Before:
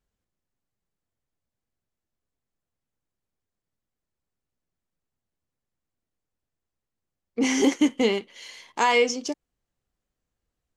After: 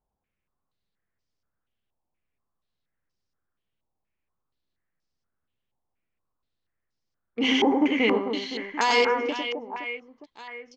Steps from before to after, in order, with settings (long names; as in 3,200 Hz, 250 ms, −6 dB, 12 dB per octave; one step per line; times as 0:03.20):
reverse bouncing-ball delay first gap 100 ms, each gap 1.6×, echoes 5
low-pass on a step sequencer 4.2 Hz 860–5,200 Hz
level −3 dB